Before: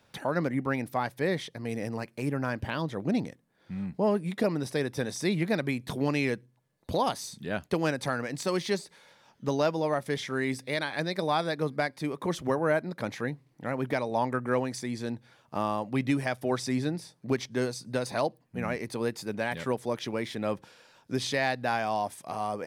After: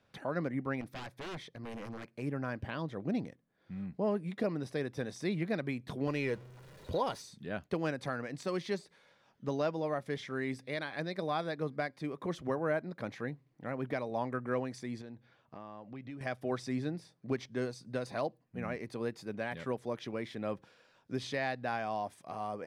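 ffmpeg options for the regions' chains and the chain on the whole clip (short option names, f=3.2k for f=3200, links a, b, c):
-filter_complex "[0:a]asettb=1/sr,asplit=3[a][b][c];[a]atrim=end=0.814[d];[b]atrim=start=0.81:end=2.08,asetpts=PTS-STARTPTS,afade=t=in:d=0.004:c=qsin,afade=t=out:st=1.266:d=0.004:c=qsin,bandreject=f=2.9k:w=12,aeval=exprs='0.0316*(abs(mod(val(0)/0.0316+3,4)-2)-1)':c=same[e];[c]atrim=start=2.076[f];[d][e]acrossfade=d=0.004:c1=hsin:c2=qsin[g];[g][f]acrossfade=d=0.004:c1=qsin:c2=hsin,asettb=1/sr,asplit=3[h][i][j];[h]atrim=end=6.074[k];[i]atrim=start=6.07:end=7.22,asetpts=PTS-STARTPTS,afade=t=in:d=0.004:c=qsin,afade=t=out:st=1.146:d=0.004:c=qsin,aeval=exprs='val(0)+0.5*0.00841*sgn(val(0))':c=same,aecho=1:1:2.1:0.35,atrim=end_sample=50715[l];[j]atrim=start=7.216[m];[k][l]acrossfade=d=0.004:c1=hsin:c2=qsin[n];[n][m]acrossfade=d=0.004:c1=qsin:c2=hsin,asettb=1/sr,asplit=3[o][p][q];[o]atrim=end=15.014[r];[p]atrim=start=15.01:end=16.21,asetpts=PTS-STARTPTS,afade=t=in:d=0.004:c=qsin,afade=t=out:st=1.196:d=0.004:c=qsin,lowpass=5.4k,acompressor=threshold=-39dB:ratio=3:attack=3.2:release=140:knee=1:detection=peak[s];[q]atrim=start=16.206[t];[r][s]acrossfade=d=0.004:c1=hsin:c2=qsin[u];[u][t]acrossfade=d=0.004:c1=qsin:c2=hsin,lowpass=f=3.2k:p=1,bandreject=f=890:w=12,volume=-6dB"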